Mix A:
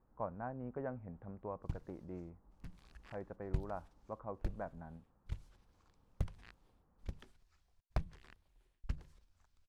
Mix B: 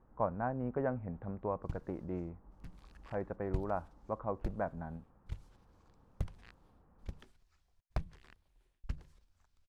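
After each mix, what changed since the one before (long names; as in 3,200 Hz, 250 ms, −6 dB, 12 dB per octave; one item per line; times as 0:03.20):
speech +7.5 dB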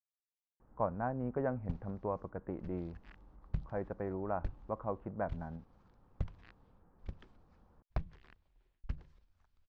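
speech: entry +0.60 s
master: add high-frequency loss of the air 150 metres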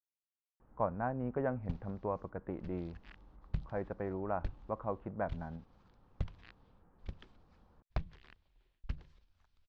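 master: add parametric band 3,600 Hz +6.5 dB 1.5 octaves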